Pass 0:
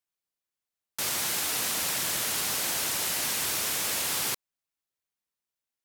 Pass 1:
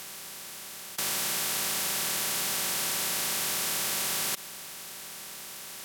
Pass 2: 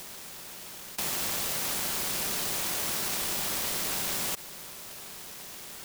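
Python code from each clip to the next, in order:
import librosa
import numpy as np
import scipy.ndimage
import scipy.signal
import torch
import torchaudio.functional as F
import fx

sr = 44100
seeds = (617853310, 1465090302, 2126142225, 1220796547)

y1 = fx.bin_compress(x, sr, power=0.2)
y1 = y1 + 0.45 * np.pad(y1, (int(5.2 * sr / 1000.0), 0))[:len(y1)]
y1 = F.gain(torch.from_numpy(y1), -7.0).numpy()
y2 = fx.noise_mod_delay(y1, sr, seeds[0], noise_hz=4500.0, depth_ms=0.18)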